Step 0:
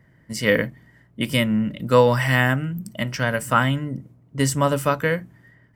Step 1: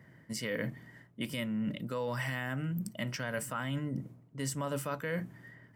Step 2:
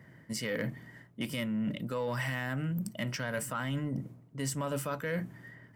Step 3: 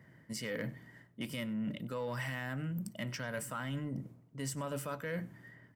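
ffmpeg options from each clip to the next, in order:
-af "alimiter=limit=-13dB:level=0:latency=1:release=72,areverse,acompressor=threshold=-32dB:ratio=6,areverse,highpass=110"
-af "aeval=exprs='0.0841*(cos(1*acos(clip(val(0)/0.0841,-1,1)))-cos(1*PI/2))+0.00531*(cos(5*acos(clip(val(0)/0.0841,-1,1)))-cos(5*PI/2))':c=same"
-af "aecho=1:1:97:0.0794,volume=-4.5dB"

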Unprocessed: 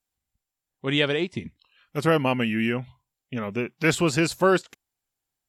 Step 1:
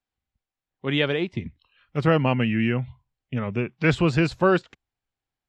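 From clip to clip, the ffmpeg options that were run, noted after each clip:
-filter_complex "[0:a]lowpass=3.6k,acrossover=split=130[a][b];[a]dynaudnorm=f=390:g=7:m=10.5dB[c];[c][b]amix=inputs=2:normalize=0"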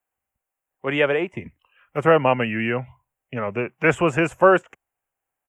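-filter_complex "[0:a]firequalizer=gain_entry='entry(220,0);entry(550,11);entry(2800,5);entry(4200,-21);entry(6500,-13)':delay=0.05:min_phase=1,acrossover=split=310|1100|3500[a][b][c][d];[d]aexciter=amount=14.5:drive=5.2:freq=6k[e];[a][b][c][e]amix=inputs=4:normalize=0,lowshelf=f=99:g=-5.5,volume=-3dB"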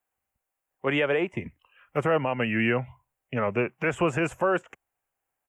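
-af "alimiter=limit=-14.5dB:level=0:latency=1:release=165"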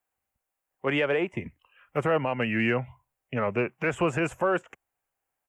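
-af "acontrast=61,volume=-7dB"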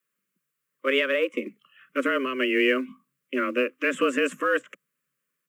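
-filter_complex "[0:a]afreqshift=130,asuperstop=centerf=790:order=8:qfactor=1.5,asplit=2[a][b];[b]acrusher=bits=5:mode=log:mix=0:aa=0.000001,volume=-12dB[c];[a][c]amix=inputs=2:normalize=0,volume=2dB"

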